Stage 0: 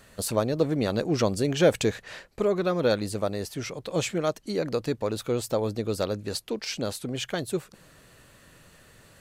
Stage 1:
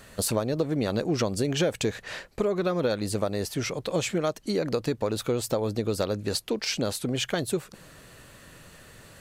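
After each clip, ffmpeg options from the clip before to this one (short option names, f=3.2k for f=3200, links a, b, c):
-af "acompressor=threshold=-27dB:ratio=6,volume=4.5dB"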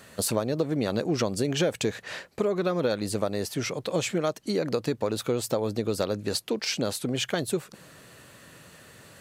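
-af "highpass=100"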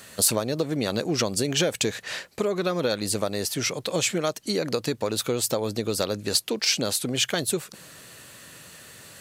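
-af "highshelf=f=2.3k:g=9"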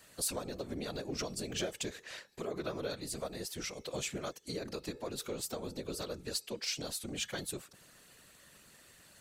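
-af "bandreject=f=430.6:t=h:w=4,bandreject=f=861.2:t=h:w=4,bandreject=f=1.2918k:t=h:w=4,bandreject=f=1.7224k:t=h:w=4,bandreject=f=2.153k:t=h:w=4,bandreject=f=2.5836k:t=h:w=4,bandreject=f=3.0142k:t=h:w=4,bandreject=f=3.4448k:t=h:w=4,bandreject=f=3.8754k:t=h:w=4,bandreject=f=4.306k:t=h:w=4,bandreject=f=4.7366k:t=h:w=4,bandreject=f=5.1672k:t=h:w=4,bandreject=f=5.5978k:t=h:w=4,bandreject=f=6.0284k:t=h:w=4,bandreject=f=6.459k:t=h:w=4,bandreject=f=6.8896k:t=h:w=4,bandreject=f=7.3202k:t=h:w=4,bandreject=f=7.7508k:t=h:w=4,bandreject=f=8.1814k:t=h:w=4,bandreject=f=8.612k:t=h:w=4,afftfilt=real='hypot(re,im)*cos(2*PI*random(0))':imag='hypot(re,im)*sin(2*PI*random(1))':win_size=512:overlap=0.75,volume=-7.5dB"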